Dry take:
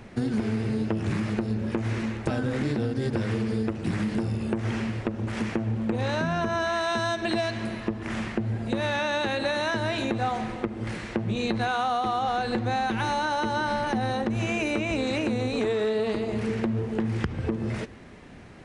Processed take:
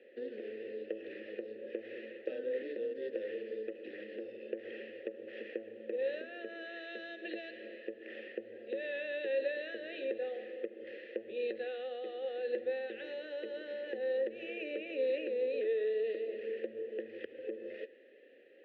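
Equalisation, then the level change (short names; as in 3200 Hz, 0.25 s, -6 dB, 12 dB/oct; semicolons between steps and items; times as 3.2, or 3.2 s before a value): vowel filter e; speaker cabinet 280–3600 Hz, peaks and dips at 650 Hz -8 dB, 1500 Hz -6 dB, 2300 Hz -7 dB; fixed phaser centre 390 Hz, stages 4; +5.0 dB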